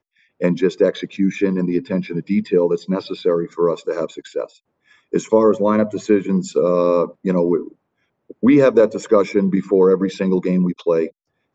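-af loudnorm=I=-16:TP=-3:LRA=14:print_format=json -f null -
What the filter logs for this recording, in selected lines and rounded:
"input_i" : "-18.1",
"input_tp" : "-2.5",
"input_lra" : "3.2",
"input_thresh" : "-28.5",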